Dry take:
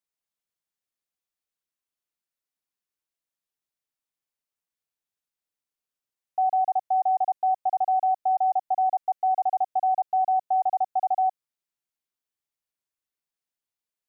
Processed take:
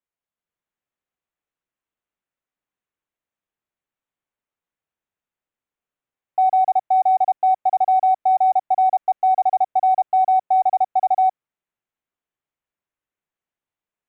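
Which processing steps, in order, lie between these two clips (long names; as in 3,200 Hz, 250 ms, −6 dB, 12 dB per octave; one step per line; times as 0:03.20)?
adaptive Wiener filter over 9 samples
automatic gain control gain up to 4 dB
level +2.5 dB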